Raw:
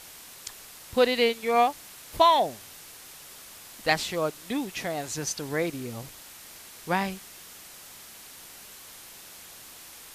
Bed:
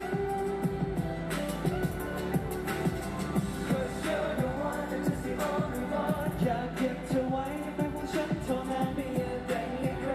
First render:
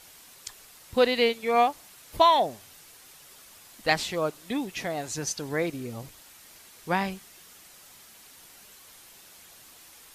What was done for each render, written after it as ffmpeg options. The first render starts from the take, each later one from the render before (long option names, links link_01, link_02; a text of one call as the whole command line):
ffmpeg -i in.wav -af "afftdn=noise_reduction=6:noise_floor=-47" out.wav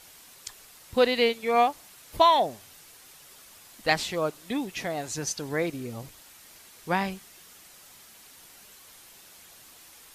ffmpeg -i in.wav -af anull out.wav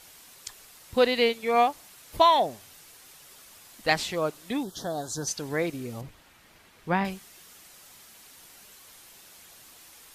ffmpeg -i in.wav -filter_complex "[0:a]asettb=1/sr,asplit=3[link_01][link_02][link_03];[link_01]atrim=end=4.634[link_04];[link_02]atrim=start=4.63:end=5.28,asetpts=PTS-STARTPTS,afade=type=in:duration=0.004:curve=qsin,afade=type=out:start_time=0.646:duration=0.004:curve=qsin,asuperstop=centerf=2300:order=8:qfactor=1.4[link_05];[link_03]atrim=start=5.276[link_06];[link_04][link_05]acrossfade=duration=0.004:curve1=hsin:curve2=qsin[link_07];[link_07][link_06]acrossfade=duration=0.004:curve1=qsin:curve2=hsin,asettb=1/sr,asplit=3[link_08][link_09][link_10];[link_08]atrim=end=6.014[link_11];[link_09]atrim=start=6.01:end=7.05,asetpts=PTS-STARTPTS,afade=type=in:duration=0.004:curve=qsin,afade=type=out:start_time=1.036:duration=0.004:curve=qsin,bass=frequency=250:gain=4,treble=frequency=4000:gain=-12[link_12];[link_10]atrim=start=7.046[link_13];[link_11][link_12]acrossfade=duration=0.004:curve1=hsin:curve2=qsin[link_14];[link_14][link_13]acrossfade=duration=0.004:curve1=qsin:curve2=hsin" out.wav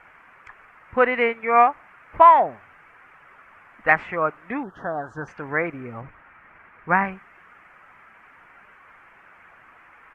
ffmpeg -i in.wav -filter_complex "[0:a]acrossover=split=8600[link_01][link_02];[link_02]acompressor=threshold=-58dB:ratio=4:attack=1:release=60[link_03];[link_01][link_03]amix=inputs=2:normalize=0,firequalizer=gain_entry='entry(380,0);entry(1300,13);entry(2300,6);entry(3800,-28)':delay=0.05:min_phase=1" out.wav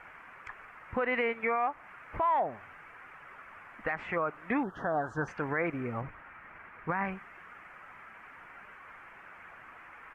ffmpeg -i in.wav -af "acompressor=threshold=-24dB:ratio=2.5,alimiter=limit=-21dB:level=0:latency=1:release=64" out.wav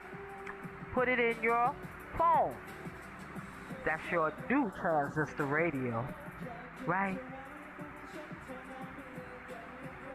ffmpeg -i in.wav -i bed.wav -filter_complex "[1:a]volume=-16dB[link_01];[0:a][link_01]amix=inputs=2:normalize=0" out.wav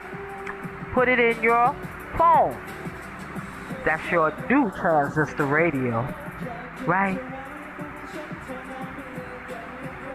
ffmpeg -i in.wav -af "volume=10.5dB" out.wav